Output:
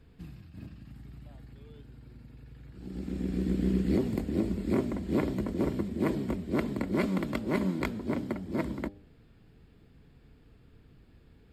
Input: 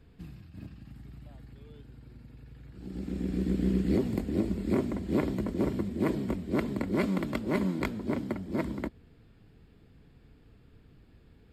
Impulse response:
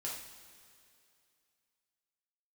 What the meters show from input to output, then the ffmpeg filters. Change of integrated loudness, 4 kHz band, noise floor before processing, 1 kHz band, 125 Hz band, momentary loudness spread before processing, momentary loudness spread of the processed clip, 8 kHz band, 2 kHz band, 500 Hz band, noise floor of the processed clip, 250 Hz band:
−0.5 dB, 0.0 dB, −59 dBFS, 0.0 dB, −0.5 dB, 21 LU, 21 LU, can't be measured, 0.0 dB, −0.5 dB, −59 dBFS, −0.5 dB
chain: -af "bandreject=frequency=100:width_type=h:width=4,bandreject=frequency=200:width_type=h:width=4,bandreject=frequency=300:width_type=h:width=4,bandreject=frequency=400:width_type=h:width=4,bandreject=frequency=500:width_type=h:width=4,bandreject=frequency=600:width_type=h:width=4,bandreject=frequency=700:width_type=h:width=4,bandreject=frequency=800:width_type=h:width=4"

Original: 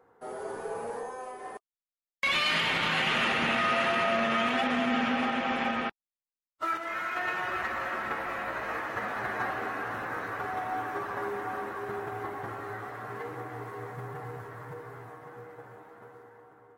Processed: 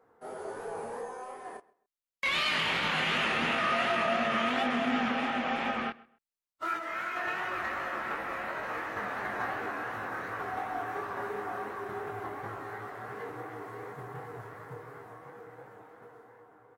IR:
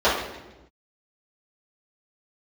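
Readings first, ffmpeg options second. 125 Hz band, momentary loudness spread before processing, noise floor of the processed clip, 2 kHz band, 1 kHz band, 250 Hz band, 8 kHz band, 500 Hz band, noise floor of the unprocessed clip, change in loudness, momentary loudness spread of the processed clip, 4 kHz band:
−3.0 dB, 17 LU, −76 dBFS, −2.0 dB, −1.5 dB, −2.0 dB, −2.0 dB, −1.5 dB, below −85 dBFS, −2.0 dB, 18 LU, −2.0 dB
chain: -filter_complex "[0:a]bandreject=frequency=60:width_type=h:width=6,bandreject=frequency=120:width_type=h:width=6,flanger=delay=19:depth=7.6:speed=2.8,asplit=2[link_01][link_02];[link_02]adelay=131,lowpass=frequency=3100:poles=1,volume=-21dB,asplit=2[link_03][link_04];[link_04]adelay=131,lowpass=frequency=3100:poles=1,volume=0.26[link_05];[link_01][link_03][link_05]amix=inputs=3:normalize=0,volume=1dB"

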